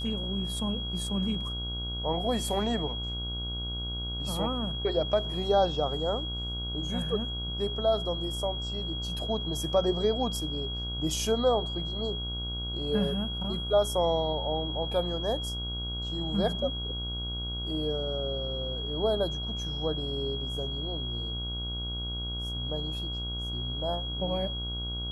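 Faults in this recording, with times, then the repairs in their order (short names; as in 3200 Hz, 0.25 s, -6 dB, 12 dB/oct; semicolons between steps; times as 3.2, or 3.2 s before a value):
buzz 60 Hz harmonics 26 -36 dBFS
tone 3300 Hz -35 dBFS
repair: de-hum 60 Hz, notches 26; notch 3300 Hz, Q 30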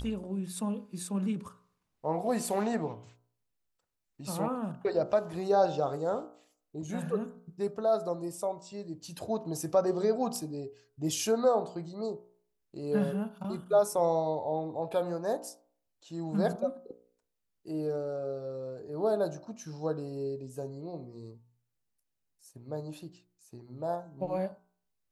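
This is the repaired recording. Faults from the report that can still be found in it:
none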